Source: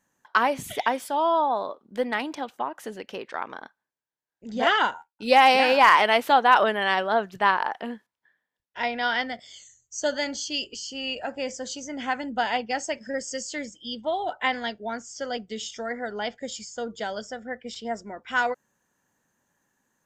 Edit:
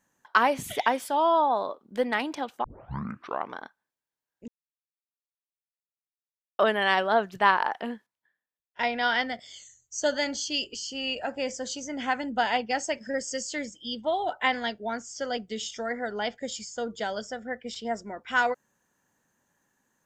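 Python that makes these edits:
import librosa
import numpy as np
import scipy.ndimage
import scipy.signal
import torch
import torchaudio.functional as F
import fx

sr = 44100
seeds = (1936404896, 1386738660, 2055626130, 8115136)

y = fx.edit(x, sr, fx.tape_start(start_s=2.64, length_s=0.91),
    fx.silence(start_s=4.48, length_s=2.11),
    fx.fade_out_to(start_s=7.88, length_s=0.91, curve='qua', floor_db=-17.5), tone=tone)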